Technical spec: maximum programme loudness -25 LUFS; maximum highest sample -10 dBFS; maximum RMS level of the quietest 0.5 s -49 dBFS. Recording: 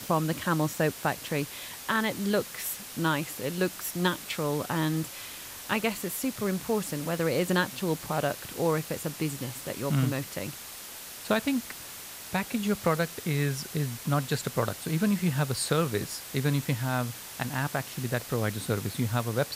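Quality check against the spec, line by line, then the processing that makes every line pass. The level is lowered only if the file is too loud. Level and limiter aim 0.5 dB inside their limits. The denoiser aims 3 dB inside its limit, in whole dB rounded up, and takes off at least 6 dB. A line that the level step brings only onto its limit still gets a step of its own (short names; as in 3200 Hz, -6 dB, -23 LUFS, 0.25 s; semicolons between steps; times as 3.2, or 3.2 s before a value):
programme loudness -30.0 LUFS: OK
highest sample -11.5 dBFS: OK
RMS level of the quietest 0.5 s -43 dBFS: fail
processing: denoiser 9 dB, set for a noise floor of -43 dBFS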